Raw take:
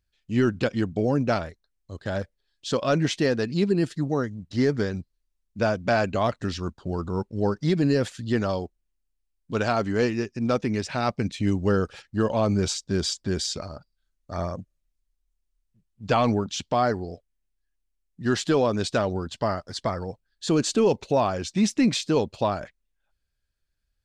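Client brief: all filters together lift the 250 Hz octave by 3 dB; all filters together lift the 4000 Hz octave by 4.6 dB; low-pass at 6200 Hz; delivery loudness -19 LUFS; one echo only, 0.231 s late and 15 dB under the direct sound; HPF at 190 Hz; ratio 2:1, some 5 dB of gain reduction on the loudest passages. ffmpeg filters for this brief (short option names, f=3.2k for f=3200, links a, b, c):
-af "highpass=190,lowpass=6.2k,equalizer=f=250:t=o:g=5.5,equalizer=f=4k:t=o:g=6.5,acompressor=threshold=-23dB:ratio=2,aecho=1:1:231:0.178,volume=8dB"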